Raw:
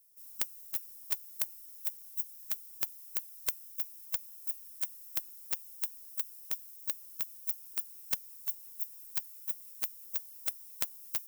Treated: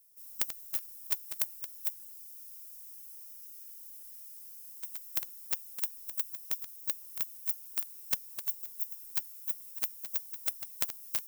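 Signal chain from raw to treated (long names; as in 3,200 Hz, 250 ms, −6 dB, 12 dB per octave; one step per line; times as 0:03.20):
delay that plays each chunk backwards 153 ms, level −10 dB
frozen spectrum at 0:01.98, 2.86 s
level +1.5 dB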